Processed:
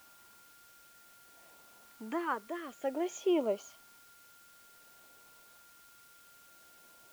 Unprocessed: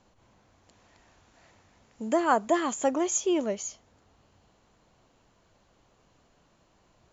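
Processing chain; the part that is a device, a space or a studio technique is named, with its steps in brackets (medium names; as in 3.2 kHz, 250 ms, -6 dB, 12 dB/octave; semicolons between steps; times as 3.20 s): shortwave radio (band-pass 330–2700 Hz; tremolo 0.58 Hz, depth 71%; LFO notch saw up 0.54 Hz 460–2100 Hz; whistle 1.4 kHz -61 dBFS; white noise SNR 21 dB)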